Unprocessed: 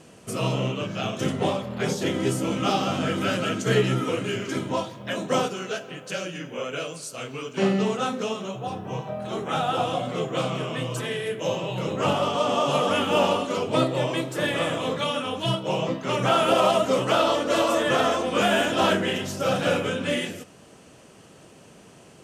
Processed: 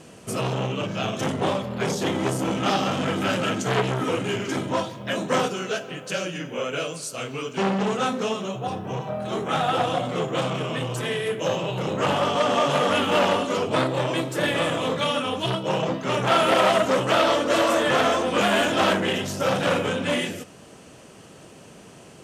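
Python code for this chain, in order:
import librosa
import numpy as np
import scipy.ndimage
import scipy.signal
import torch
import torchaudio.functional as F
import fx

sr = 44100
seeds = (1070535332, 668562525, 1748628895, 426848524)

y = fx.transformer_sat(x, sr, knee_hz=1400.0)
y = y * 10.0 ** (3.5 / 20.0)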